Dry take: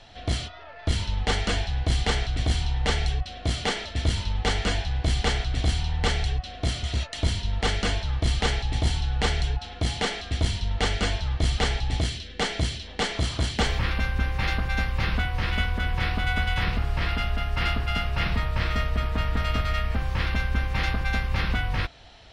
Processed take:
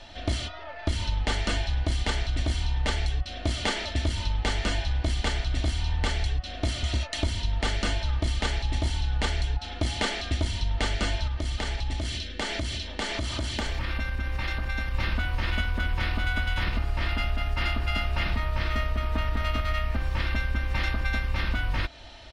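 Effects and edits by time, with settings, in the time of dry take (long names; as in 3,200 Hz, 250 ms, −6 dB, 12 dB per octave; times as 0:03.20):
0:11.27–0:14.95: downward compressor 5 to 1, threshold −29 dBFS
whole clip: comb filter 3.3 ms, depth 47%; downward compressor, threshold −25 dBFS; level +2.5 dB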